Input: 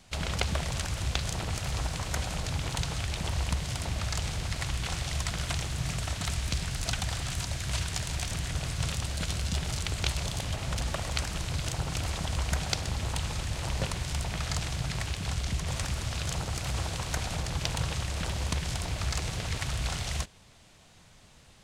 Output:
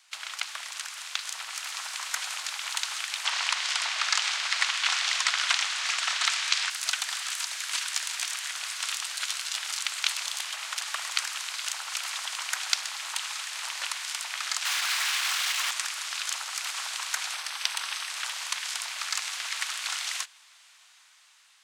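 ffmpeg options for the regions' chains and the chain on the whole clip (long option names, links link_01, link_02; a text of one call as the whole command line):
ffmpeg -i in.wav -filter_complex "[0:a]asettb=1/sr,asplit=3[link_01][link_02][link_03];[link_01]atrim=end=3.254[link_04];[link_02]atrim=start=3.25:end=6.7,asetpts=PTS-STARTPTS,afade=type=in:duration=0.004:curve=qsin,afade=type=out:start_time=3.446:duration=0.004:curve=qsin,lowpass=6000,acontrast=71[link_05];[link_03]atrim=start=6.696[link_06];[link_04][link_05]acrossfade=duration=0.004:curve1=hsin:curve2=qsin[link_07];[link_07][link_06]acrossfade=duration=0.004:curve1=qsin:curve2=hsin,asettb=1/sr,asplit=3[link_08][link_09][link_10];[link_08]atrim=end=14.654[link_11];[link_09]atrim=start=14.65:end=15.71,asetpts=PTS-STARTPTS,afade=type=in:duration=0.004:curve=qsin,afade=type=out:start_time=1.056:duration=0.004:curve=qsin,asplit=2[link_12][link_13];[link_13]highpass=frequency=720:poles=1,volume=25dB,asoftclip=type=tanh:threshold=-16.5dB[link_14];[link_12][link_14]amix=inputs=2:normalize=0,lowpass=frequency=3400:poles=1,volume=-6dB,volume=30.5dB,asoftclip=hard,volume=-30.5dB[link_15];[link_10]atrim=start=15.706[link_16];[link_11][link_15]acrossfade=duration=0.004:curve1=hsin:curve2=qsin[link_17];[link_17][link_16]acrossfade=duration=0.004:curve1=qsin:curve2=hsin,asettb=1/sr,asplit=3[link_18][link_19][link_20];[link_18]atrim=end=17.334[link_21];[link_19]atrim=start=17.33:end=18.11,asetpts=PTS-STARTPTS,afade=type=in:duration=0.004:curve=qsin,afade=type=out:start_time=0.776:duration=0.004:curve=qsin,equalizer=frequency=85:width=0.68:gain=-6,bandreject=frequency=7000:width=6.4[link_22];[link_20]atrim=start=18.106[link_23];[link_21][link_22]acrossfade=duration=0.004:curve1=hsin:curve2=qsin[link_24];[link_24][link_23]acrossfade=duration=0.004:curve1=qsin:curve2=hsin,highpass=frequency=1100:width=0.5412,highpass=frequency=1100:width=1.3066,dynaudnorm=framelen=450:gausssize=7:maxgain=6dB" out.wav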